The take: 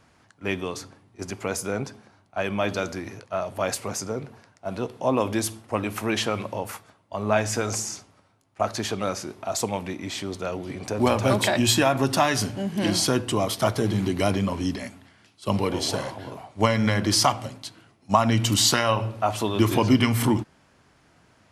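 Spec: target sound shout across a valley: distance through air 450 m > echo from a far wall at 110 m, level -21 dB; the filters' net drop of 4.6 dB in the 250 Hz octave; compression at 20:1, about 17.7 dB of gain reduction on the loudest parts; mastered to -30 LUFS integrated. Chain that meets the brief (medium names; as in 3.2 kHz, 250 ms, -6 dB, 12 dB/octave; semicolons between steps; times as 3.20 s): peaking EQ 250 Hz -5 dB; compression 20:1, threshold -31 dBFS; distance through air 450 m; echo from a far wall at 110 m, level -21 dB; trim +9.5 dB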